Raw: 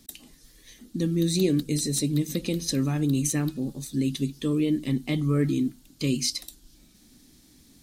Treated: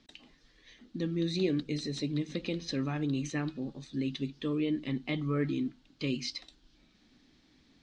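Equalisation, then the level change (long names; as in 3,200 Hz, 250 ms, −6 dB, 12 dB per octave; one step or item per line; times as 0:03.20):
low-pass filter 4,000 Hz 12 dB per octave
high-frequency loss of the air 110 metres
low-shelf EQ 410 Hz −10 dB
0.0 dB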